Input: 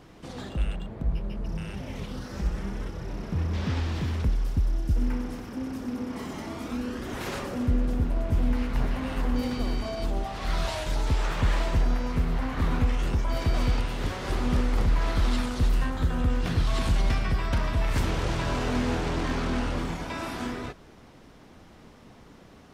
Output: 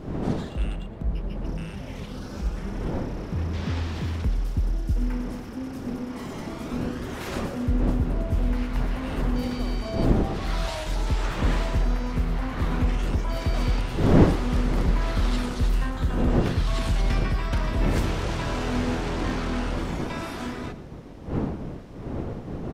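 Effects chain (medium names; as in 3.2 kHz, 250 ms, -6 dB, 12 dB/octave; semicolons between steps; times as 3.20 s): wind noise 300 Hz -31 dBFS; 2.17–2.57 s: band-stop 1.9 kHz, Q 6.7; echo from a far wall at 20 m, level -15 dB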